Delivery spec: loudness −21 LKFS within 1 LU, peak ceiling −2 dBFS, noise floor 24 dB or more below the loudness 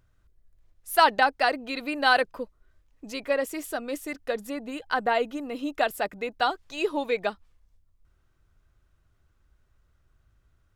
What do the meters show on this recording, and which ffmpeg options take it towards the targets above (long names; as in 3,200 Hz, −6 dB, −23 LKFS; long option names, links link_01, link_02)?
integrated loudness −27.0 LKFS; sample peak −6.5 dBFS; target loudness −21.0 LKFS
→ -af "volume=6dB,alimiter=limit=-2dB:level=0:latency=1"